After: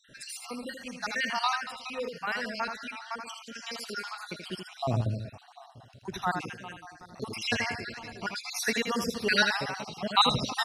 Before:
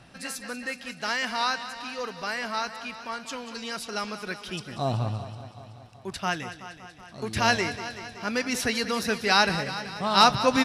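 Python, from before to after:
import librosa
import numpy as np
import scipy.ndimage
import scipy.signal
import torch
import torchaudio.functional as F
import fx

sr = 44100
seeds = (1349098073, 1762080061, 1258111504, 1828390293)

y = fx.spec_dropout(x, sr, seeds[0], share_pct=60)
y = y + 10.0 ** (-6.5 / 20.0) * np.pad(y, (int(80 * sr / 1000.0), 0))[:len(y)]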